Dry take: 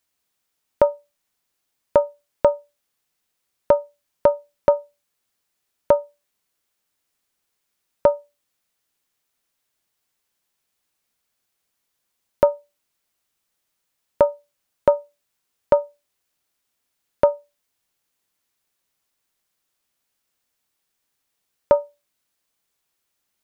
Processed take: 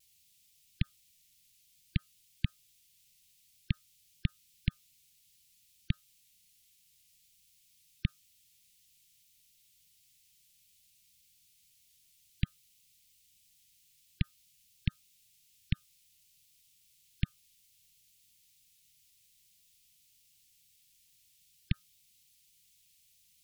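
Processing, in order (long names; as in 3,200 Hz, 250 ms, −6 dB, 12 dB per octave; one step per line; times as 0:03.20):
inverse Chebyshev band-stop filter 450–970 Hz, stop band 70 dB
pitch vibrato 0.56 Hz 19 cents
in parallel at 0 dB: brickwall limiter −31 dBFS, peak gain reduction 9 dB
on the sum: gate on every frequency bin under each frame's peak −30 dB strong
level +4.5 dB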